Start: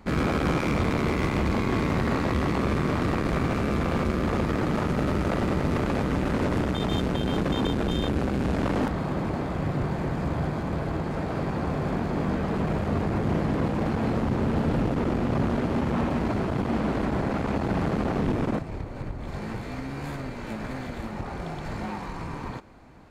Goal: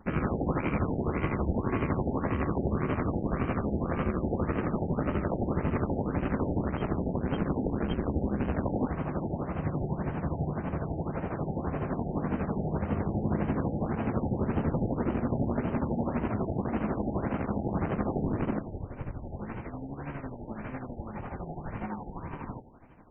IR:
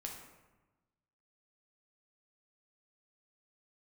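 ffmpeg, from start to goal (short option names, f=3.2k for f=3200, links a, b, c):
-filter_complex "[0:a]tremolo=f=12:d=0.64,asplit=2[a][b];[1:a]atrim=start_sample=2205,afade=t=out:st=0.31:d=0.01,atrim=end_sample=14112,asetrate=57330,aresample=44100[c];[b][c]afir=irnorm=-1:irlink=0,volume=-3dB[d];[a][d]amix=inputs=2:normalize=0,afftfilt=real='re*lt(b*sr/1024,860*pow(3200/860,0.5+0.5*sin(2*PI*1.8*pts/sr)))':imag='im*lt(b*sr/1024,860*pow(3200/860,0.5+0.5*sin(2*PI*1.8*pts/sr)))':win_size=1024:overlap=0.75,volume=-4dB"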